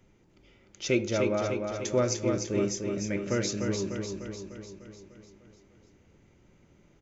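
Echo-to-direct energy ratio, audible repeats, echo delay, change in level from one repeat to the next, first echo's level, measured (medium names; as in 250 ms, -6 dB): -3.0 dB, 7, 299 ms, -4.5 dB, -5.0 dB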